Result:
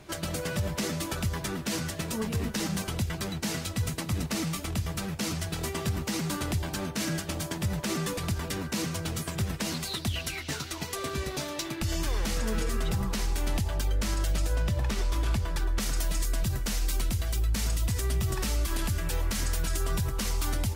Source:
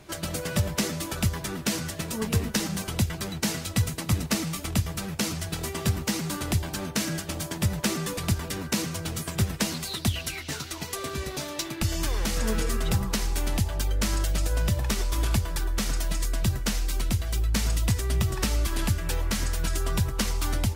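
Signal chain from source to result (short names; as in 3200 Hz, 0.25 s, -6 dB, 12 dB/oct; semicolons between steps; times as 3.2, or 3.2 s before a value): high shelf 6700 Hz -3 dB, from 14.56 s -9.5 dB, from 15.8 s +3.5 dB; limiter -20 dBFS, peak gain reduction 9 dB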